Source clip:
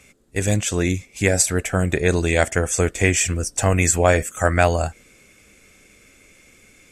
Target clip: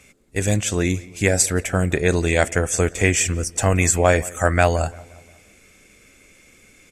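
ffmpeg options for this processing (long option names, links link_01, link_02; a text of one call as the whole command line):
ffmpeg -i in.wav -filter_complex "[0:a]asplit=2[link_01][link_02];[link_02]adelay=175,lowpass=frequency=2400:poles=1,volume=-21dB,asplit=2[link_03][link_04];[link_04]adelay=175,lowpass=frequency=2400:poles=1,volume=0.5,asplit=2[link_05][link_06];[link_06]adelay=175,lowpass=frequency=2400:poles=1,volume=0.5,asplit=2[link_07][link_08];[link_08]adelay=175,lowpass=frequency=2400:poles=1,volume=0.5[link_09];[link_01][link_03][link_05][link_07][link_09]amix=inputs=5:normalize=0" out.wav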